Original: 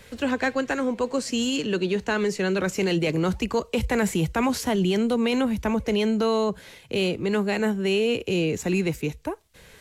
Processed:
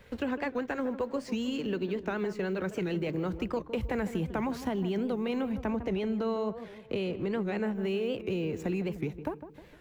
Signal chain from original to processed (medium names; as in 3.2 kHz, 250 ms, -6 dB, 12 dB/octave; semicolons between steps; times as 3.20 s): companding laws mixed up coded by A; 5.52–7.75 s: treble shelf 12 kHz -9 dB; compression 4:1, threshold -32 dBFS, peak gain reduction 11 dB; peaking EQ 8.7 kHz -14 dB 2.2 oct; filtered feedback delay 155 ms, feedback 49%, low-pass 1.3 kHz, level -11 dB; warped record 78 rpm, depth 160 cents; trim +2 dB